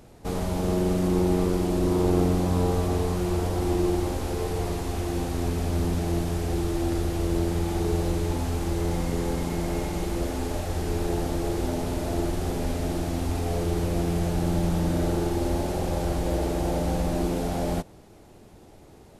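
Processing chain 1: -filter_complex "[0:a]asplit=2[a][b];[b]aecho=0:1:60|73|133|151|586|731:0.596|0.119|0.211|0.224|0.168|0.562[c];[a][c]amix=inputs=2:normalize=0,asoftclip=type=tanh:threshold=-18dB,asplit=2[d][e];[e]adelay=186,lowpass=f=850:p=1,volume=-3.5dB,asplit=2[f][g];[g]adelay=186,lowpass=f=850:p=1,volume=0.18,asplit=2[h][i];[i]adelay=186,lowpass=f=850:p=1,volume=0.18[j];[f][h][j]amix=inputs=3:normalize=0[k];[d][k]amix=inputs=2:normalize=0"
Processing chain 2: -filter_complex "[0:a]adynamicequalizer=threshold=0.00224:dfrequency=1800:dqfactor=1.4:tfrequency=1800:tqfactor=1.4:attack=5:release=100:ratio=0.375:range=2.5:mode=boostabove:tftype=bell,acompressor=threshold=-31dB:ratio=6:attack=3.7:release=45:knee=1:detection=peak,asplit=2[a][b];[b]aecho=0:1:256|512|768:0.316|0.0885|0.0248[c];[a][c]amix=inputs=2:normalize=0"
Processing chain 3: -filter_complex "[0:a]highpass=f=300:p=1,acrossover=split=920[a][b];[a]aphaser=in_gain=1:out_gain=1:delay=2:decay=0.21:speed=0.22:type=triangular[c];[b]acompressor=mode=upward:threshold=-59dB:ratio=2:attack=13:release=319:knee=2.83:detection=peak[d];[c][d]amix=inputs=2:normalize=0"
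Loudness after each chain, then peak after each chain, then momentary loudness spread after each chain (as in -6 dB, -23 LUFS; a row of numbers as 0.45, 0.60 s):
-24.5, -34.0, -31.0 LUFS; -14.0, -21.0, -14.5 dBFS; 3, 2, 5 LU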